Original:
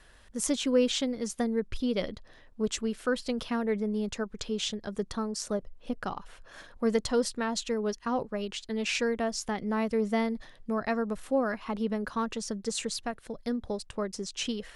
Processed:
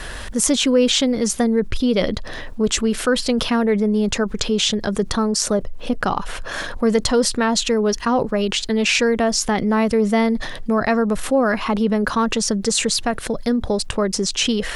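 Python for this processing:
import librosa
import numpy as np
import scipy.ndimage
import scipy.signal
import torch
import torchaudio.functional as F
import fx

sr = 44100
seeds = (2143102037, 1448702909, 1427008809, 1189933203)

y = fx.env_flatten(x, sr, amount_pct=50)
y = F.gain(torch.from_numpy(y), 7.5).numpy()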